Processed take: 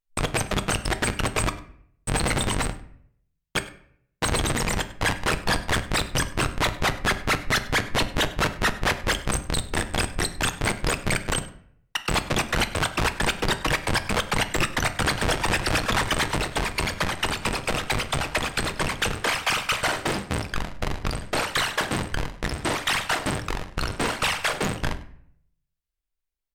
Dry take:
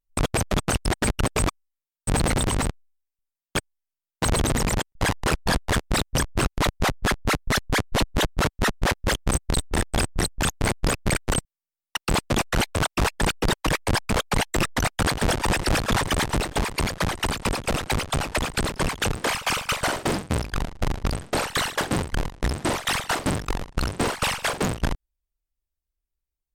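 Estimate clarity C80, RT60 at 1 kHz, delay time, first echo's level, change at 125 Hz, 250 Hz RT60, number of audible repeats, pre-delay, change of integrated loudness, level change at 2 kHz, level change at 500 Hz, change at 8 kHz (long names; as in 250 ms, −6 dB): 16.0 dB, 0.55 s, 100 ms, −19.5 dB, −3.0 dB, 0.70 s, 1, 6 ms, −0.5 dB, +2.0 dB, −1.5 dB, −1.5 dB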